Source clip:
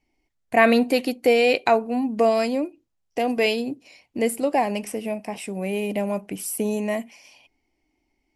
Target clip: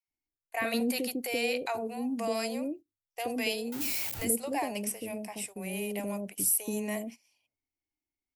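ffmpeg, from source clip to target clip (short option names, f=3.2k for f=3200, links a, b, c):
-filter_complex "[0:a]asettb=1/sr,asplit=3[a][b][c];[a]atrim=end=3.724[d];[b]atrim=start=3.72:end=4.25,asetpts=PTS-STARTPTS,afade=t=in:d=0.004:c=qsin,afade=t=out:st=0.526:d=0.004:c=qsin,aeval=exprs='val(0)+0.5*0.0422*sgn(val(0))':c=same[e];[c]atrim=start=4.246[f];[d][e]acrossfade=d=0.004:c1=hsin:c2=qsin[g];[g][f]acrossfade=d=0.004:c1=qsin:c2=hsin,equalizer=f=100:t=o:w=0.28:g=12.5,alimiter=limit=-12.5dB:level=0:latency=1:release=14,aemphasis=mode=production:type=50fm,acrossover=split=570[h][i];[h]adelay=80[j];[j][i]amix=inputs=2:normalize=0,agate=range=-16dB:threshold=-35dB:ratio=16:detection=peak,volume=-8dB"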